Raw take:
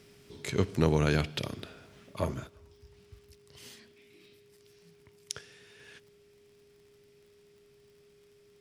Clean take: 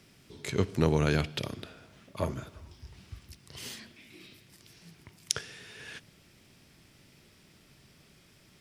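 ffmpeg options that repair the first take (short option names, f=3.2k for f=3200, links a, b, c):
-af "adeclick=t=4,bandreject=f=410:w=30,asetnsamples=n=441:p=0,asendcmd='2.47 volume volume 8.5dB',volume=0dB"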